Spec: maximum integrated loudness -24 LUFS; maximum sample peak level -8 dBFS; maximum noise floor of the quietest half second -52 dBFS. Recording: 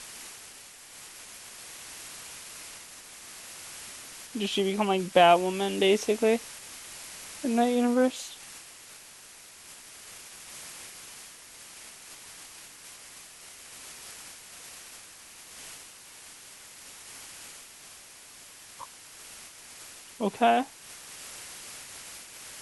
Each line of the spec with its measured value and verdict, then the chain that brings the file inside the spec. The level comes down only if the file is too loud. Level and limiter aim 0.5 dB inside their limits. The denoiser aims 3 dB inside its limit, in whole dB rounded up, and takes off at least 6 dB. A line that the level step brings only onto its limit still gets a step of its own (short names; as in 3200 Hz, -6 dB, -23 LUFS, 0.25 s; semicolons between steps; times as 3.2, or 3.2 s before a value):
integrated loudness -28.5 LUFS: OK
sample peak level -6.5 dBFS: fail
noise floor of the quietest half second -50 dBFS: fail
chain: denoiser 6 dB, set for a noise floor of -50 dBFS; limiter -8.5 dBFS